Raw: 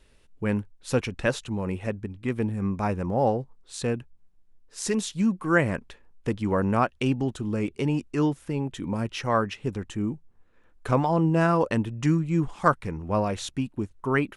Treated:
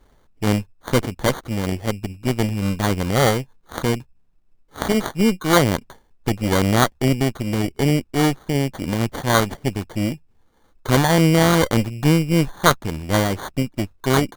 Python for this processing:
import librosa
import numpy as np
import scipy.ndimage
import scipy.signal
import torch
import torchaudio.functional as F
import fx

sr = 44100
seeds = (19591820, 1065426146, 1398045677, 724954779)

y = fx.sample_hold(x, sr, seeds[0], rate_hz=2600.0, jitter_pct=0)
y = fx.cheby_harmonics(y, sr, harmonics=(8,), levels_db=(-16,), full_scale_db=-6.5)
y = y * 10.0 ** (4.5 / 20.0)